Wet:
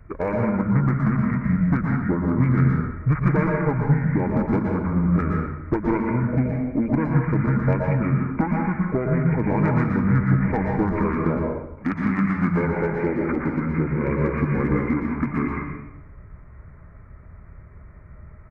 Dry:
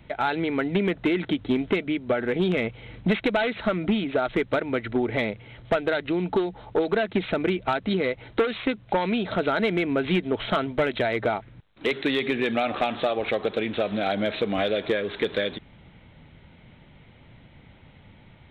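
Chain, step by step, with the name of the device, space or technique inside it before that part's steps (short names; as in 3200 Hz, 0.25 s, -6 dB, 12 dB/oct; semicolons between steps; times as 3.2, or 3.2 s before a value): monster voice (pitch shift -6 st; formant shift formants -3 st; low shelf 180 Hz +7.5 dB; reverb RT60 0.85 s, pre-delay 0.11 s, DRR -0.5 dB); gain -1.5 dB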